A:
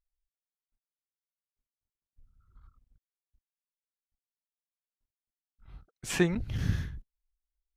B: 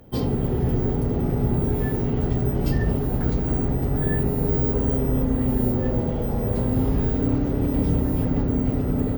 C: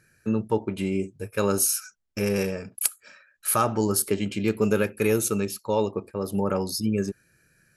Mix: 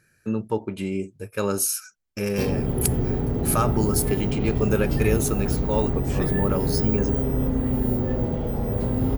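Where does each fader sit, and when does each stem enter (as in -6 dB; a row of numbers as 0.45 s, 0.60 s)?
-7.0 dB, -1.5 dB, -1.0 dB; 0.00 s, 2.25 s, 0.00 s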